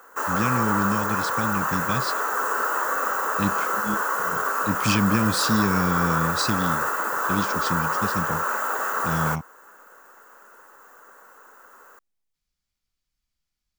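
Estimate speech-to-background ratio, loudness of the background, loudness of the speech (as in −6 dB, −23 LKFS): −2.5 dB, −24.5 LKFS, −27.0 LKFS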